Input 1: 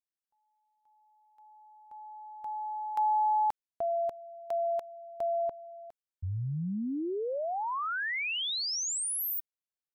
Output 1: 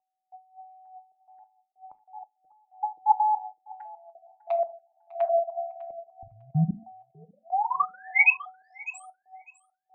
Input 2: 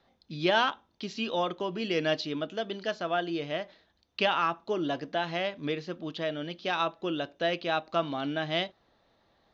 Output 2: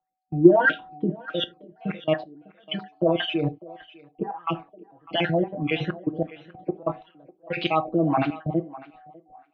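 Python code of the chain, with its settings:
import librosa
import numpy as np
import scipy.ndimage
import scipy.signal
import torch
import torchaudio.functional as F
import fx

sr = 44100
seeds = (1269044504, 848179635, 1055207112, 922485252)

p1 = fx.spec_dropout(x, sr, seeds[0], share_pct=50)
p2 = fx.low_shelf(p1, sr, hz=440.0, db=7.5)
p3 = p2 + 0.96 * np.pad(p2, (int(6.3 * sr / 1000.0), 0))[:len(p2)]
p4 = fx.over_compress(p3, sr, threshold_db=-30.0, ratio=-0.5)
p5 = p3 + F.gain(torch.from_numpy(p4), 2.0).numpy()
p6 = p5 + 10.0 ** (-41.0 / 20.0) * np.sin(2.0 * np.pi * 750.0 * np.arange(len(p5)) / sr)
p7 = fx.step_gate(p6, sr, bpm=94, pattern='..xxxxx.x..x.x.', floor_db=-24.0, edge_ms=4.5)
p8 = p7 + fx.echo_thinned(p7, sr, ms=601, feedback_pct=25, hz=410.0, wet_db=-14, dry=0)
p9 = fx.rev_gated(p8, sr, seeds[1], gate_ms=110, shape='falling', drr_db=10.5)
p10 = fx.filter_lfo_lowpass(p9, sr, shape='sine', hz=1.6, low_hz=380.0, high_hz=2900.0, q=2.5)
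p11 = fx.band_widen(p10, sr, depth_pct=40)
y = F.gain(torch.from_numpy(p11), -3.5).numpy()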